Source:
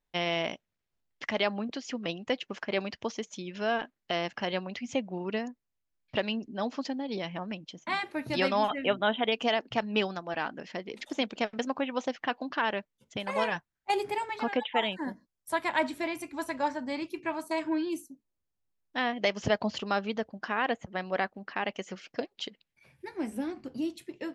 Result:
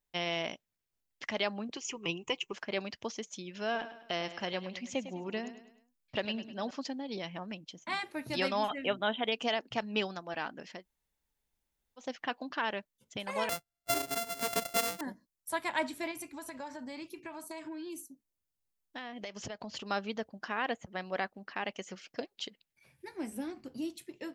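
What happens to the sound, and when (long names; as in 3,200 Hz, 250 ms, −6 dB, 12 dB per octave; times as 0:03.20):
0:01.76–0:02.53: EQ curve with evenly spaced ripples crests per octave 0.72, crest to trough 15 dB
0:03.64–0:06.71: repeating echo 103 ms, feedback 44%, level −12.5 dB
0:10.78–0:12.04: fill with room tone, crossfade 0.16 s
0:13.49–0:15.01: samples sorted by size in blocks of 64 samples
0:16.11–0:19.90: downward compressor, threshold −34 dBFS
whole clip: high-shelf EQ 5,600 Hz +10 dB; level −5 dB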